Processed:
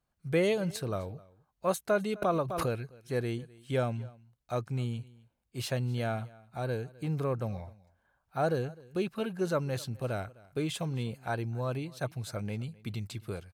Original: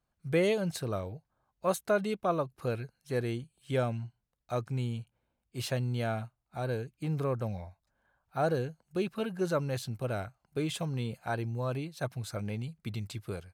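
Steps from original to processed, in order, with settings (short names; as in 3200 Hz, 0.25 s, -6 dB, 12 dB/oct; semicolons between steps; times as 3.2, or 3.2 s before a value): echo 0.257 s -22.5 dB; 2.22–2.75 backwards sustainer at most 34 dB/s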